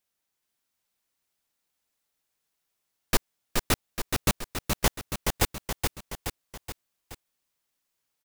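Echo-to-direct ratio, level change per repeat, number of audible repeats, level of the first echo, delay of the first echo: −2.5 dB, −5.5 dB, 4, −4.0 dB, 424 ms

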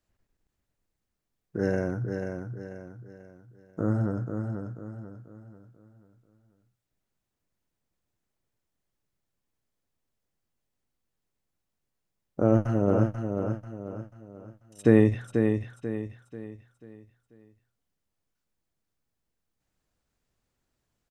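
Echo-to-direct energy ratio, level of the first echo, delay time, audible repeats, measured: −5.5 dB, −6.0 dB, 489 ms, 4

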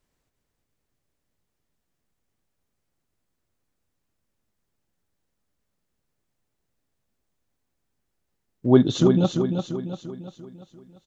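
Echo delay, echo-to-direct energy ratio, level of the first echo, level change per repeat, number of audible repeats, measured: 344 ms, −5.0 dB, −6.0 dB, −6.5 dB, 5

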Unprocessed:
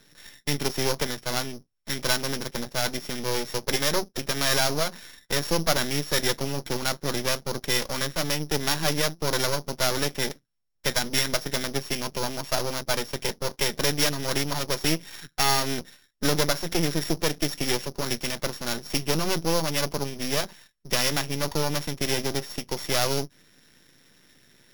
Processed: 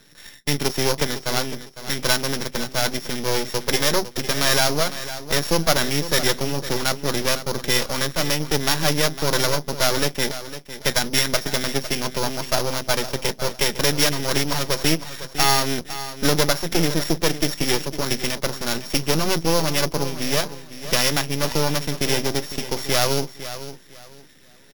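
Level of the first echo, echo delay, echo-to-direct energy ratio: −13.0 dB, 505 ms, −12.5 dB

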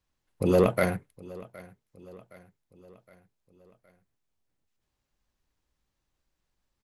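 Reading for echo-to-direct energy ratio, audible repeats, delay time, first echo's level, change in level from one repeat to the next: −19.5 dB, 3, 766 ms, −21.0 dB, −5.5 dB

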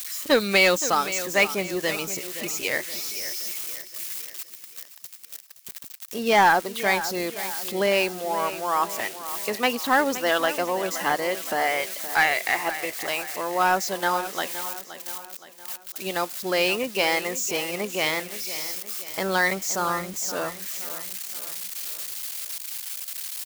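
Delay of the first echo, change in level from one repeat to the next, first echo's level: 520 ms, −6.5 dB, −13.0 dB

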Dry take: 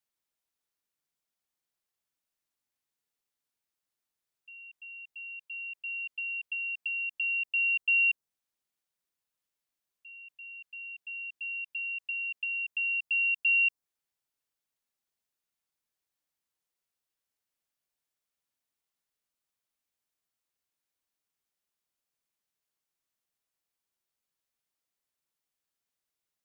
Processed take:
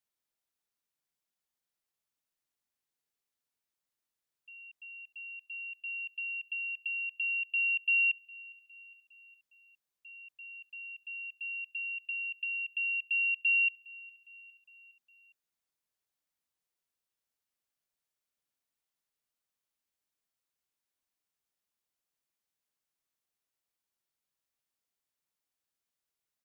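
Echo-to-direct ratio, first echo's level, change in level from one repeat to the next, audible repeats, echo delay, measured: −20.5 dB, −22.0 dB, −5.0 dB, 3, 409 ms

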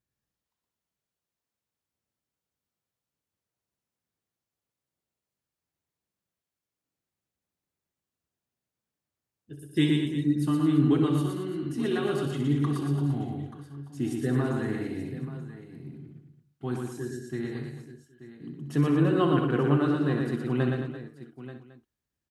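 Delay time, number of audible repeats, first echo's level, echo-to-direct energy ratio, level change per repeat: 64 ms, 8, −9.5 dB, −1.0 dB, repeats not evenly spaced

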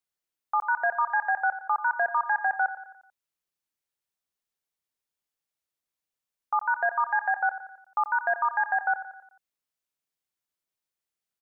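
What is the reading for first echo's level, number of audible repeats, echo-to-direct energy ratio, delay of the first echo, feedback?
−13.0 dB, 4, −11.5 dB, 88 ms, 52%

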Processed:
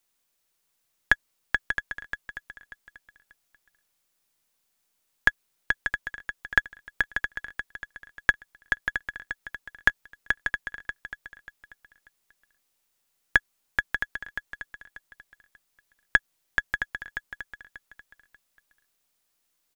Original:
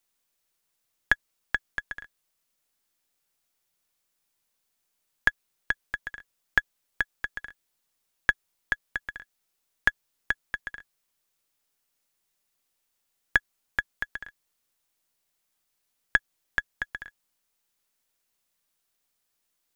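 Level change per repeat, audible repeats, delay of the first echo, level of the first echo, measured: −12.0 dB, 3, 588 ms, −9.0 dB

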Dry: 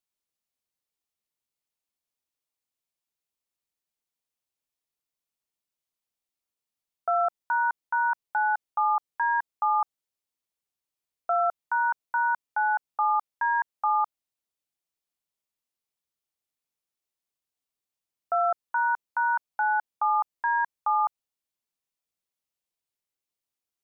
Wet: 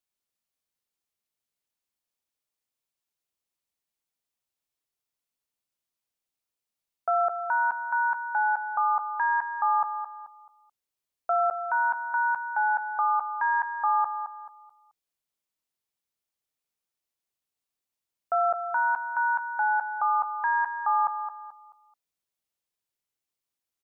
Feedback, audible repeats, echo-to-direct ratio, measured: 33%, 3, −8.5 dB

